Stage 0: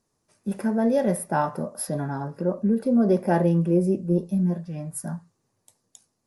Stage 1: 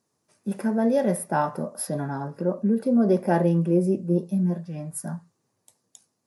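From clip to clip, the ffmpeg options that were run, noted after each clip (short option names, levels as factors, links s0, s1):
-af "highpass=110"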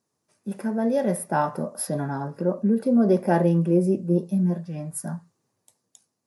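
-af "dynaudnorm=f=200:g=11:m=1.68,volume=0.708"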